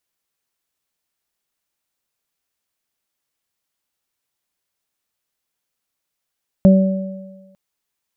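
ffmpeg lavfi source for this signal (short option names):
-f lavfi -i "aevalsrc='0.562*pow(10,-3*t/1.21)*sin(2*PI*191*t)+0.075*pow(10,-3*t/0.77)*sin(2*PI*382*t)+0.224*pow(10,-3*t/1.38)*sin(2*PI*573*t)':d=0.9:s=44100"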